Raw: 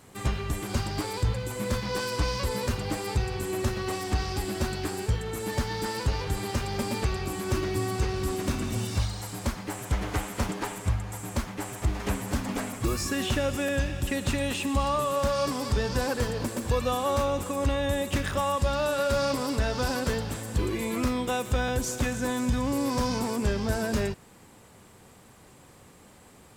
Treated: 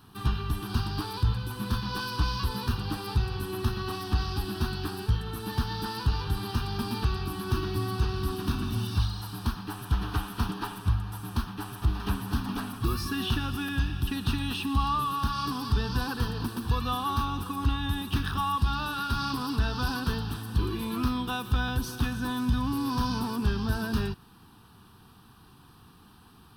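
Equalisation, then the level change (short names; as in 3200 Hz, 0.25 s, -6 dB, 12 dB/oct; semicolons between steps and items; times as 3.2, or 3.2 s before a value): fixed phaser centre 2100 Hz, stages 6; +1.5 dB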